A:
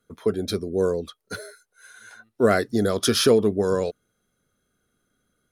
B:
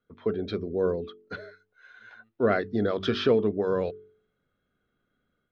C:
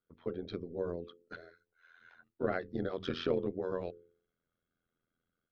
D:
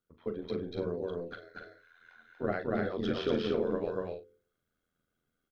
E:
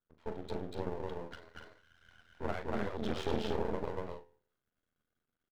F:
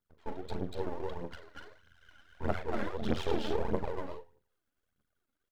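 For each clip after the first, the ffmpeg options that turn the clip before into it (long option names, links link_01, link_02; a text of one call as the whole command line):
ffmpeg -i in.wav -af "lowpass=frequency=3400:width=0.5412,lowpass=frequency=3400:width=1.3066,bandreject=frequency=47.97:width_type=h:width=4,bandreject=frequency=95.94:width_type=h:width=4,bandreject=frequency=143.91:width_type=h:width=4,bandreject=frequency=191.88:width_type=h:width=4,bandreject=frequency=239.85:width_type=h:width=4,bandreject=frequency=287.82:width_type=h:width=4,bandreject=frequency=335.79:width_type=h:width=4,bandreject=frequency=383.76:width_type=h:width=4,bandreject=frequency=431.73:width_type=h:width=4,dynaudnorm=framelen=150:gausssize=3:maxgain=4dB,volume=-7dB" out.wav
ffmpeg -i in.wav -af "tremolo=f=84:d=0.857,volume=-6.5dB" out.wav
ffmpeg -i in.wav -filter_complex "[0:a]aphaser=in_gain=1:out_gain=1:delay=4.8:decay=0.29:speed=1.6:type=triangular,asplit=2[link_01][link_02];[link_02]adelay=39,volume=-10.5dB[link_03];[link_01][link_03]amix=inputs=2:normalize=0,aecho=1:1:239.1|291.5:0.891|0.355" out.wav
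ffmpeg -i in.wav -af "aeval=exprs='max(val(0),0)':channel_layout=same" out.wav
ffmpeg -i in.wav -af "aphaser=in_gain=1:out_gain=1:delay=3.8:decay=0.57:speed=1.6:type=triangular" out.wav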